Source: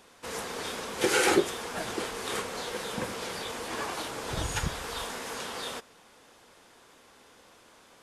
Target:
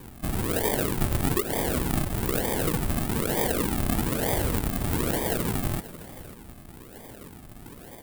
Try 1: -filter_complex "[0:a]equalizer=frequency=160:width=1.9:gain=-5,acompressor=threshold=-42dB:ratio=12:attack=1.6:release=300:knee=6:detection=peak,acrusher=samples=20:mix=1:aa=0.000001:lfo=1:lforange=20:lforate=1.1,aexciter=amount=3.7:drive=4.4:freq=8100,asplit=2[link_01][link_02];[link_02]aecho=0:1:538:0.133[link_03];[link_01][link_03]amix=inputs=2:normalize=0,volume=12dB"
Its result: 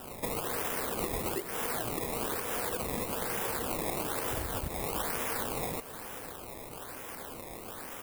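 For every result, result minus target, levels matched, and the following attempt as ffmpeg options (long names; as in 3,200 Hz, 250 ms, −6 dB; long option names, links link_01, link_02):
sample-and-hold swept by an LFO: distortion −16 dB; downward compressor: peak gain reduction +10 dB
-filter_complex "[0:a]equalizer=frequency=160:width=1.9:gain=-5,acompressor=threshold=-42dB:ratio=12:attack=1.6:release=300:knee=6:detection=peak,acrusher=samples=63:mix=1:aa=0.000001:lfo=1:lforange=63:lforate=1.1,aexciter=amount=3.7:drive=4.4:freq=8100,asplit=2[link_01][link_02];[link_02]aecho=0:1:538:0.133[link_03];[link_01][link_03]amix=inputs=2:normalize=0,volume=12dB"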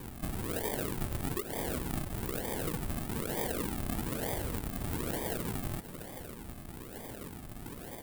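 downward compressor: peak gain reduction +10 dB
-filter_complex "[0:a]equalizer=frequency=160:width=1.9:gain=-5,acompressor=threshold=-31dB:ratio=12:attack=1.6:release=300:knee=6:detection=peak,acrusher=samples=63:mix=1:aa=0.000001:lfo=1:lforange=63:lforate=1.1,aexciter=amount=3.7:drive=4.4:freq=8100,asplit=2[link_01][link_02];[link_02]aecho=0:1:538:0.133[link_03];[link_01][link_03]amix=inputs=2:normalize=0,volume=12dB"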